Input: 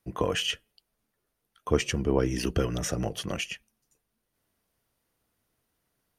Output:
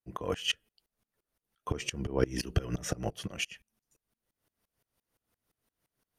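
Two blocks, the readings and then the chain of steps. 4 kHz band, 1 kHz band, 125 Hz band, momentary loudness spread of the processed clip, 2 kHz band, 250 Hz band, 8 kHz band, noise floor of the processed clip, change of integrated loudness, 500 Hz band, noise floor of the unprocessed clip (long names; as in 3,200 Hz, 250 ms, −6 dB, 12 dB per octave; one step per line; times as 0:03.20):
−3.5 dB, −5.5 dB, −4.0 dB, 7 LU, −4.0 dB, −7.0 dB, −4.5 dB, below −85 dBFS, −5.0 dB, −6.5 dB, −81 dBFS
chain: tremolo with a ramp in dB swelling 5.8 Hz, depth 24 dB
level +3 dB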